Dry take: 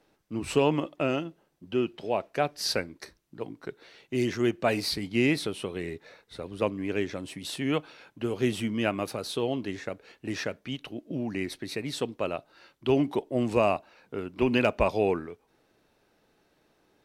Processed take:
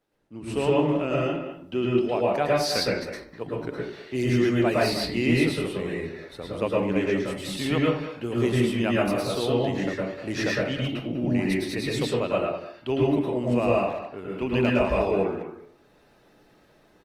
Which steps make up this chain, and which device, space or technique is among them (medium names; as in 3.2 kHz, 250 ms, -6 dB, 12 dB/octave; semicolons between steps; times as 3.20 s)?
speakerphone in a meeting room (reverberation RT60 0.50 s, pre-delay 103 ms, DRR -4 dB; speakerphone echo 200 ms, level -11 dB; level rider gain up to 12 dB; trim -9 dB; Opus 32 kbps 48 kHz)